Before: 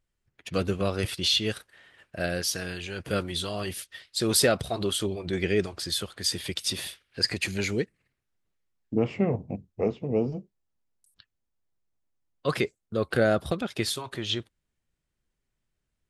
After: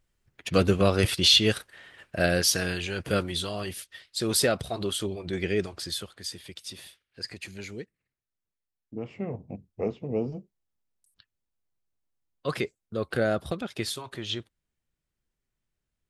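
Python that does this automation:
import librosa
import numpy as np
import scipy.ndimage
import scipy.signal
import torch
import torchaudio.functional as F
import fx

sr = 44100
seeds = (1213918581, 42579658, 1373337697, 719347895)

y = fx.gain(x, sr, db=fx.line((2.66, 5.5), (3.73, -2.0), (5.84, -2.0), (6.43, -11.0), (9.03, -11.0), (9.7, -3.0)))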